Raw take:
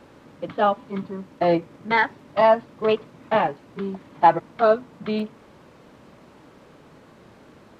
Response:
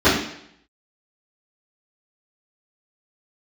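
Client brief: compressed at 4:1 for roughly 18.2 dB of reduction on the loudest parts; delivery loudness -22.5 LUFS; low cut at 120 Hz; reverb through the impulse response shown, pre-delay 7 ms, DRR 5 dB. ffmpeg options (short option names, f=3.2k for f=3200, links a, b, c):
-filter_complex "[0:a]highpass=120,acompressor=threshold=-32dB:ratio=4,asplit=2[a][b];[1:a]atrim=start_sample=2205,adelay=7[c];[b][c]afir=irnorm=-1:irlink=0,volume=-29.5dB[d];[a][d]amix=inputs=2:normalize=0,volume=11dB"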